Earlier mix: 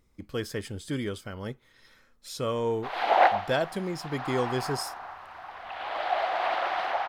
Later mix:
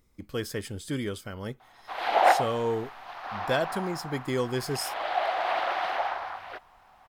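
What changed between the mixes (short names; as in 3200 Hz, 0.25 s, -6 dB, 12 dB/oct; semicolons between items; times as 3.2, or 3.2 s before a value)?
background: entry -0.95 s; master: add high shelf 10000 Hz +7.5 dB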